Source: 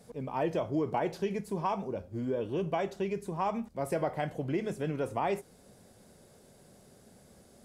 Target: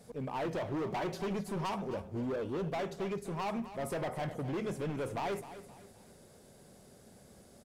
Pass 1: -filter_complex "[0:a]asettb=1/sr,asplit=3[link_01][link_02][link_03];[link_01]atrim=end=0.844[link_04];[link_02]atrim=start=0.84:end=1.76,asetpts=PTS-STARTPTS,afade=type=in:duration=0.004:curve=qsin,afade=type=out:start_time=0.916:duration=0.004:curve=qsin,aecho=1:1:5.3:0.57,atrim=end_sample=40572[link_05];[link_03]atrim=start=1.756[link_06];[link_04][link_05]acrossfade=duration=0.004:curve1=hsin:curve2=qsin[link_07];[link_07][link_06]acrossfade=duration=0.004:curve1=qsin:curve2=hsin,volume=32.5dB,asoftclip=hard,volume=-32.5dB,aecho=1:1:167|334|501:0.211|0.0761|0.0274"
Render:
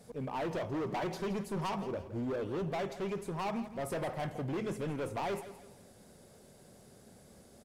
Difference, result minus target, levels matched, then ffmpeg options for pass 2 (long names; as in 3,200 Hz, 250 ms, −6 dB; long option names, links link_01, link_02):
echo 92 ms early
-filter_complex "[0:a]asettb=1/sr,asplit=3[link_01][link_02][link_03];[link_01]atrim=end=0.844[link_04];[link_02]atrim=start=0.84:end=1.76,asetpts=PTS-STARTPTS,afade=type=in:duration=0.004:curve=qsin,afade=type=out:start_time=0.916:duration=0.004:curve=qsin,aecho=1:1:5.3:0.57,atrim=end_sample=40572[link_05];[link_03]atrim=start=1.756[link_06];[link_04][link_05]acrossfade=duration=0.004:curve1=hsin:curve2=qsin[link_07];[link_07][link_06]acrossfade=duration=0.004:curve1=qsin:curve2=hsin,volume=32.5dB,asoftclip=hard,volume=-32.5dB,aecho=1:1:259|518|777:0.211|0.0761|0.0274"